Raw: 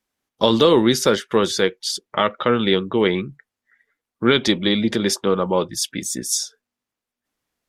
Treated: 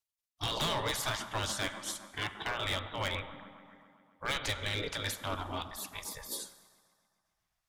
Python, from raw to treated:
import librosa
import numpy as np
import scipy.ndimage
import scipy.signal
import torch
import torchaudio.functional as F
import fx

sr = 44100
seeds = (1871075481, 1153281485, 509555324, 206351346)

y = fx.echo_wet_bandpass(x, sr, ms=133, feedback_pct=70, hz=640.0, wet_db=-13.0)
y = fx.spec_gate(y, sr, threshold_db=-15, keep='weak')
y = fx.low_shelf(y, sr, hz=93.0, db=12.0)
y = fx.rev_schroeder(y, sr, rt60_s=1.4, comb_ms=31, drr_db=15.5)
y = np.clip(y, -10.0 ** (-22.5 / 20.0), 10.0 ** (-22.5 / 20.0))
y = y * librosa.db_to_amplitude(-5.5)